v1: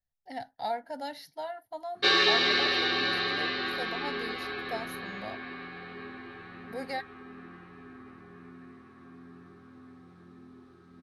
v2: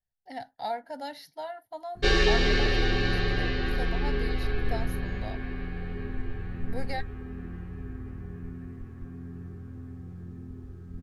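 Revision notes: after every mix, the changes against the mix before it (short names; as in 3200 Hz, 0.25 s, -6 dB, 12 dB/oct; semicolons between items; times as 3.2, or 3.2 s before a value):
background: remove speaker cabinet 320–9800 Hz, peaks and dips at 470 Hz -6 dB, 1200 Hz +8 dB, 2200 Hz +3 dB, 3900 Hz +9 dB, 7100 Hz -8 dB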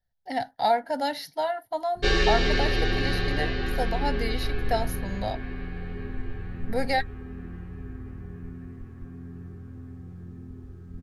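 speech +10.0 dB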